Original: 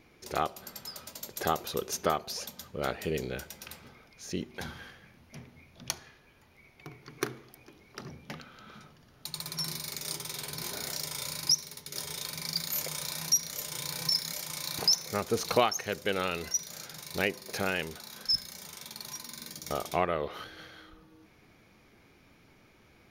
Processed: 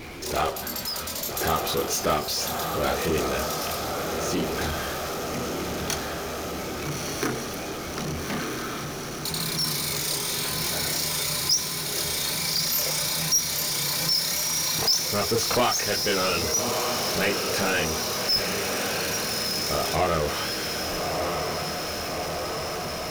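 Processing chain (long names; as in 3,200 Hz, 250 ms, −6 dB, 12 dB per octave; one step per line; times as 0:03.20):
multi-voice chorus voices 4, 0.49 Hz, delay 27 ms, depth 2.2 ms
feedback delay with all-pass diffusion 1,255 ms, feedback 63%, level −8 dB
power curve on the samples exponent 0.5
level +1 dB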